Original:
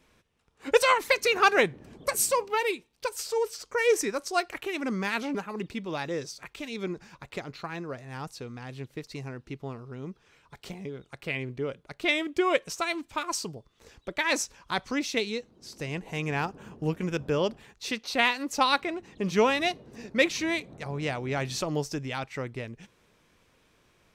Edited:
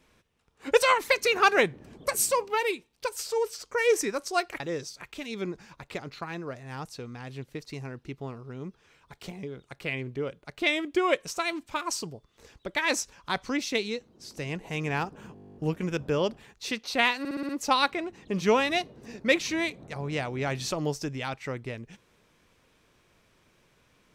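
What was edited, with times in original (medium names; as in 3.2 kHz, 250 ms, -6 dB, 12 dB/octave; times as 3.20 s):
4.60–6.02 s: delete
16.76 s: stutter 0.02 s, 12 plays
18.39 s: stutter 0.06 s, 6 plays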